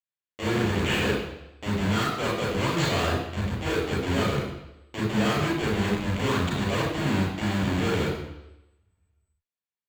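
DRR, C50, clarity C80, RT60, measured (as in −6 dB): −4.5 dB, 2.0 dB, 5.5 dB, 0.90 s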